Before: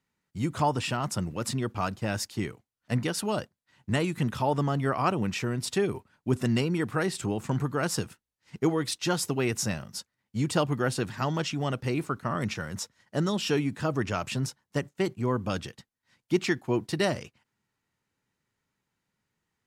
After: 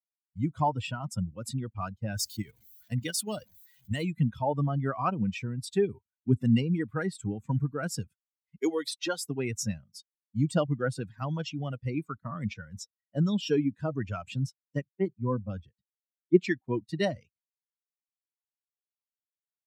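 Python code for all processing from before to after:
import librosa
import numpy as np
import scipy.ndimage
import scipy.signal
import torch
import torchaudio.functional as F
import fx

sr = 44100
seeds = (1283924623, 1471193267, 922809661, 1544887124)

y = fx.chain(x, sr, fx.zero_step(step_db=-38.5),
    fx.high_shelf(hz=2800.0, db=8.5),
    fx.level_steps(step_db=9), at=(2.17, 4.04))
y = fx.chain(y, sr, fx.highpass(hz=300.0, slope=12),
    fx.band_squash(depth_pct=70), at=(8.61, 9.25))
y = fx.chain(y, sr, fx.high_shelf(hz=3000.0, db=-11.0),
    fx.band_widen(depth_pct=40), at=(14.82, 16.4))
y = fx.bin_expand(y, sr, power=2.0)
y = scipy.signal.sosfilt(scipy.signal.butter(2, 86.0, 'highpass', fs=sr, output='sos'), y)
y = fx.low_shelf(y, sr, hz=450.0, db=7.0)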